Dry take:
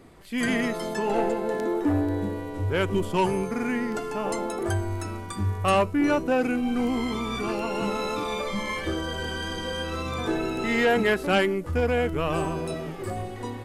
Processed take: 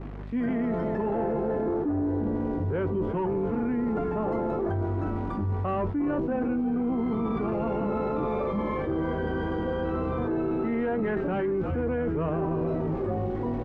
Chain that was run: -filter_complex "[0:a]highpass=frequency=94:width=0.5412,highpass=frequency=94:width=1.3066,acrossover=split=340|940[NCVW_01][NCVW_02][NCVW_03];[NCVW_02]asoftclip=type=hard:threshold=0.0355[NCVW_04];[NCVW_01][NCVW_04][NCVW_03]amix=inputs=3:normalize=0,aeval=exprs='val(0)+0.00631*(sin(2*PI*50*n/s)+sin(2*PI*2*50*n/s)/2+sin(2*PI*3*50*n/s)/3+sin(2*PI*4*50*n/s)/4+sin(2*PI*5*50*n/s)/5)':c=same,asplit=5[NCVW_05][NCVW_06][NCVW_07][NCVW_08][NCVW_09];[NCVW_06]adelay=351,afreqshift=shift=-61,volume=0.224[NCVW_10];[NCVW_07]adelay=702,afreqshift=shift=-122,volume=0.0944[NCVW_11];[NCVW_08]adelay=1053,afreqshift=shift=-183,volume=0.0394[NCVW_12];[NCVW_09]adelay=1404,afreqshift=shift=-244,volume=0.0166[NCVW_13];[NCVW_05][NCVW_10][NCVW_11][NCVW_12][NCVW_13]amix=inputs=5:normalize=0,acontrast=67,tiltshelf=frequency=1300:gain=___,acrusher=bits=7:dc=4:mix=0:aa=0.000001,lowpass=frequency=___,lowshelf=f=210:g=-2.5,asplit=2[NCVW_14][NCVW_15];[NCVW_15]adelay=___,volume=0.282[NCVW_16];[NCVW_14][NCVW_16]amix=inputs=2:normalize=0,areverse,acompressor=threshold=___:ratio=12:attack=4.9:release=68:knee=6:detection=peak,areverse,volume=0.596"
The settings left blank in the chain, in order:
8, 1700, 13, 0.1